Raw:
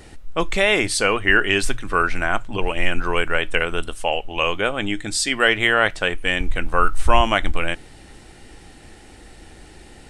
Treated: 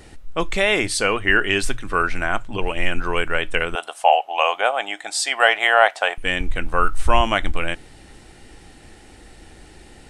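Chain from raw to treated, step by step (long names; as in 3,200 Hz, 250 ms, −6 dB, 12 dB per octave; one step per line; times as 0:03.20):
0:03.75–0:06.18: high-pass with resonance 730 Hz, resonance Q 4.8
level −1 dB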